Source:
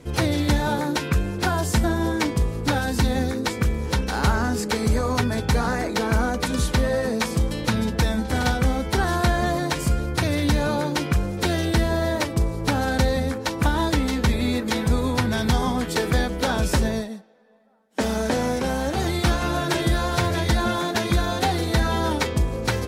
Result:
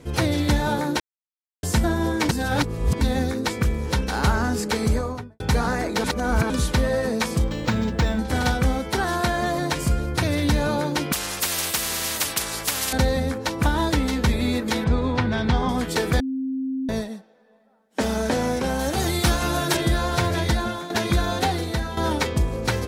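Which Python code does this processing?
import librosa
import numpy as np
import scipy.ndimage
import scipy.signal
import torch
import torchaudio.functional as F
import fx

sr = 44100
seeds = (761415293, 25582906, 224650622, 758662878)

y = fx.studio_fade_out(x, sr, start_s=4.84, length_s=0.56)
y = fx.resample_linear(y, sr, factor=4, at=(7.44, 8.19))
y = fx.low_shelf(y, sr, hz=110.0, db=-10.5, at=(8.78, 9.58))
y = fx.spectral_comp(y, sr, ratio=10.0, at=(11.12, 12.93))
y = fx.lowpass(y, sr, hz=3600.0, slope=12, at=(14.84, 15.69))
y = fx.high_shelf(y, sr, hz=5900.0, db=10.0, at=(18.79, 19.77))
y = fx.edit(y, sr, fx.silence(start_s=1.0, length_s=0.63),
    fx.reverse_span(start_s=2.29, length_s=0.72),
    fx.reverse_span(start_s=6.04, length_s=0.46),
    fx.bleep(start_s=16.2, length_s=0.69, hz=264.0, db=-23.5),
    fx.fade_out_to(start_s=20.45, length_s=0.45, floor_db=-11.0),
    fx.fade_out_to(start_s=21.42, length_s=0.55, floor_db=-10.0), tone=tone)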